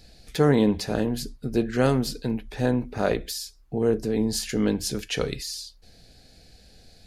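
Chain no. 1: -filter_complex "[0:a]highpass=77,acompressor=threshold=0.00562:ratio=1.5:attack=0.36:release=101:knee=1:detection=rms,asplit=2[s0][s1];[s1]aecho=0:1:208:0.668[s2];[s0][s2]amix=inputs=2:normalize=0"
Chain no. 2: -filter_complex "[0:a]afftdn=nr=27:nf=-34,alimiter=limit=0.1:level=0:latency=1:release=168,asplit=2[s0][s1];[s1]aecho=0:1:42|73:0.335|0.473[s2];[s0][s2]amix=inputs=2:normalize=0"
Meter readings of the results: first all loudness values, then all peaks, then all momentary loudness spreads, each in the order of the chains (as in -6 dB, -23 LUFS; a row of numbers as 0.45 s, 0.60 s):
-34.5 LUFS, -31.0 LUFS; -17.5 dBFS, -16.0 dBFS; 20 LU, 7 LU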